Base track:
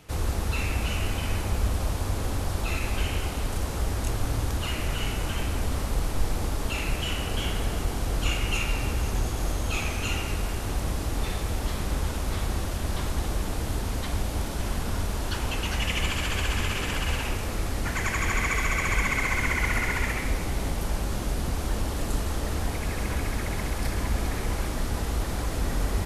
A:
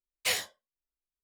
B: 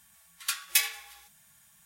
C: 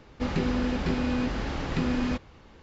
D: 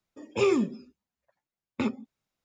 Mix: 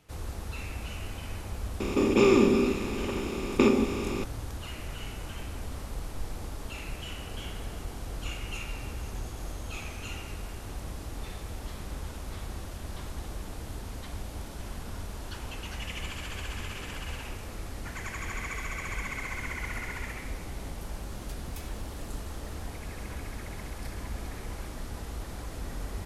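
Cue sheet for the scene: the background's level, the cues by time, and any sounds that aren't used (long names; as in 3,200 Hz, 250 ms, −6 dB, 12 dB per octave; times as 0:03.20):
base track −10 dB
0:01.80: mix in D −1 dB + compressor on every frequency bin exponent 0.2
0:20.81: mix in B −11.5 dB + downward compressor 2 to 1, threshold −43 dBFS
not used: A, C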